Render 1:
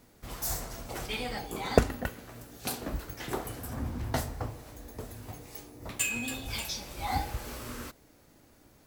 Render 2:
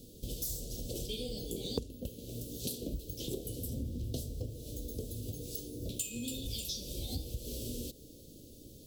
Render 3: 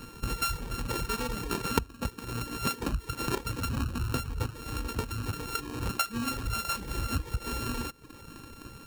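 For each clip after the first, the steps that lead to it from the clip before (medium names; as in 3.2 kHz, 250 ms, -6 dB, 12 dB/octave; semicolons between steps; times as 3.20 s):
elliptic band-stop 510–3300 Hz, stop band 40 dB; compression 4:1, threshold -45 dBFS, peak gain reduction 23.5 dB; trim +8 dB
sorted samples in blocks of 32 samples; reverb removal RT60 0.71 s; trim +8.5 dB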